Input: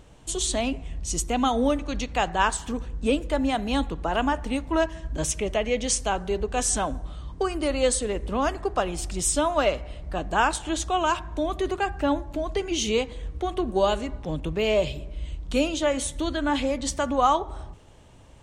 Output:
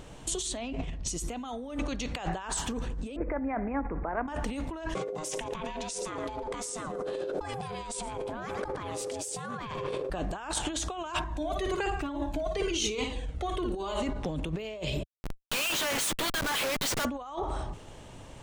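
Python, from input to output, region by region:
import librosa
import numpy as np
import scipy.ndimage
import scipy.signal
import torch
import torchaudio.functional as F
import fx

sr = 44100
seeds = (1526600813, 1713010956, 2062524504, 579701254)

y = fx.chain(x, sr, fx.lowpass(hz=5300.0, slope=12),
    fx.env_flatten(amount_pct=50), at=(0.57, 1.08))
y = fx.chain(y, sr, fx.steep_lowpass(hz=2300.0, slope=96),
    fx.peak_eq(hz=140.0, db=-5.0, octaves=1.2),
    fx.over_compress(threshold_db=-27.0, ratio=-0.5), at=(3.16, 4.28))
y = fx.chain(y, sr, fx.ring_mod(carrier_hz=460.0),
    fx.echo_single(ms=115, db=-18.5),
    fx.env_flatten(amount_pct=70), at=(4.95, 10.1))
y = fx.chain(y, sr, fx.room_flutter(wall_m=9.7, rt60_s=0.4),
    fx.comb_cascade(direction='falling', hz=1.1), at=(11.24, 14.03))
y = fx.chain(y, sr, fx.highpass(hz=1500.0, slope=12),
    fx.schmitt(flips_db=-43.0), at=(15.03, 17.05))
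y = fx.over_compress(y, sr, threshold_db=-33.0, ratio=-1.0)
y = fx.peak_eq(y, sr, hz=61.0, db=-6.5, octaves=1.2)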